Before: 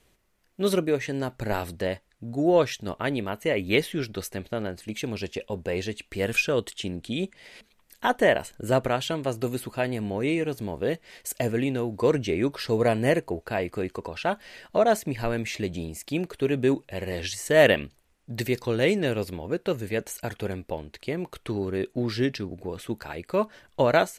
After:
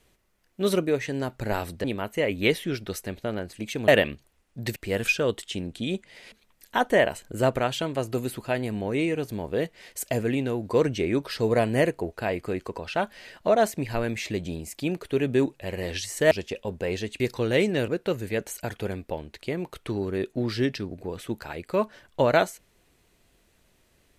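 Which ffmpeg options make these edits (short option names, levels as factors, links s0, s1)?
-filter_complex "[0:a]asplit=7[s0][s1][s2][s3][s4][s5][s6];[s0]atrim=end=1.842[s7];[s1]atrim=start=3.118:end=5.162[s8];[s2]atrim=start=17.598:end=18.482[s9];[s3]atrim=start=6.048:end=17.602[s10];[s4]atrim=start=5.158:end=6.052[s11];[s5]atrim=start=18.478:end=19.162[s12];[s6]atrim=start=19.478[s13];[s7][s8]acrossfade=d=0.004:c1=hsin:c2=hsin[s14];[s14][s9]acrossfade=d=0.004:c1=hsin:c2=hsin[s15];[s15][s10]acrossfade=d=0.004:c1=hsin:c2=hsin[s16];[s16][s11]acrossfade=d=0.004:c1=hsin:c2=hsin[s17];[s17][s12]acrossfade=d=0.004:c1=hsin:c2=hsin[s18];[s18][s13]acrossfade=d=0.004:c1=hsin:c2=hsin"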